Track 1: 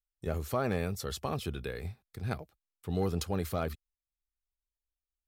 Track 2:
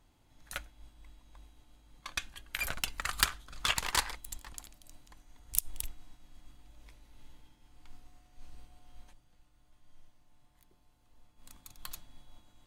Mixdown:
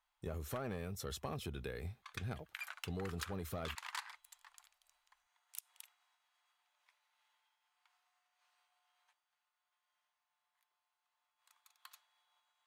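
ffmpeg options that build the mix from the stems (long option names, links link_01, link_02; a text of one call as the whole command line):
ffmpeg -i stem1.wav -i stem2.wav -filter_complex "[0:a]bandreject=frequency=4600:width=9.6,asoftclip=type=tanh:threshold=-23dB,volume=-4dB[link_01];[1:a]highpass=frequency=920:width=0.5412,highpass=frequency=920:width=1.3066,highshelf=frequency=3700:gain=-11.5,volume=-6.5dB[link_02];[link_01][link_02]amix=inputs=2:normalize=0,acompressor=threshold=-38dB:ratio=6" out.wav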